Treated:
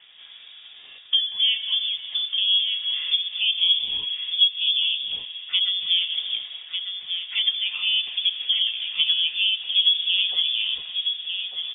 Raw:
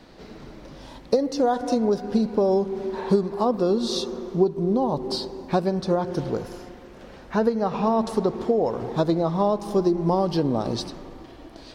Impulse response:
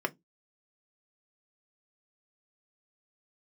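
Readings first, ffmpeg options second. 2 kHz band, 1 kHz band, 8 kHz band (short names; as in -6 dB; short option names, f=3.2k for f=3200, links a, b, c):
+11.0 dB, under -25 dB, under -35 dB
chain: -filter_complex "[0:a]aecho=1:1:1198|2396|3594:0.447|0.116|0.0302,asplit=2[a][b];[1:a]atrim=start_sample=2205[c];[b][c]afir=irnorm=-1:irlink=0,volume=-5.5dB[d];[a][d]amix=inputs=2:normalize=0,lowpass=f=3.1k:t=q:w=0.5098,lowpass=f=3.1k:t=q:w=0.6013,lowpass=f=3.1k:t=q:w=0.9,lowpass=f=3.1k:t=q:w=2.563,afreqshift=-3700,volume=-7.5dB"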